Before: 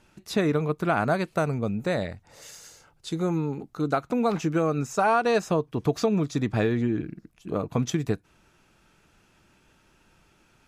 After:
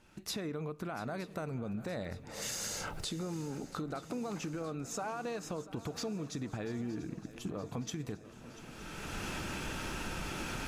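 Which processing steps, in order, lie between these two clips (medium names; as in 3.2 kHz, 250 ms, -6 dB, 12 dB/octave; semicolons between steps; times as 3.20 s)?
recorder AGC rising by 26 dB/s; peak limiter -20 dBFS, peak gain reduction 10 dB; compression, threshold -31 dBFS, peak gain reduction 7.5 dB; shuffle delay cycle 918 ms, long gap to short 3:1, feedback 63%, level -17 dB; on a send at -18 dB: reverberation RT60 0.60 s, pre-delay 4 ms; on the sum: trim -4.5 dB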